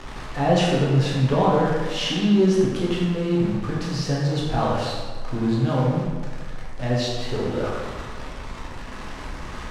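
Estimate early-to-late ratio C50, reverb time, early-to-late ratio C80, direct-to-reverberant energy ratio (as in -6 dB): -0.5 dB, 1.5 s, 2.0 dB, -5.5 dB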